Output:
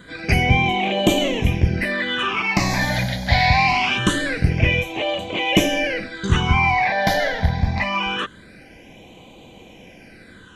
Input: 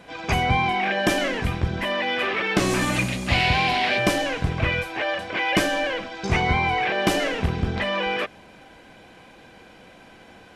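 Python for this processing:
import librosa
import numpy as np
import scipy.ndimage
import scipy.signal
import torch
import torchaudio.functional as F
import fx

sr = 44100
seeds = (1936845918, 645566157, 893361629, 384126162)

y = fx.phaser_stages(x, sr, stages=8, low_hz=350.0, high_hz=1600.0, hz=0.24, feedback_pct=20)
y = F.gain(torch.from_numpy(y), 6.0).numpy()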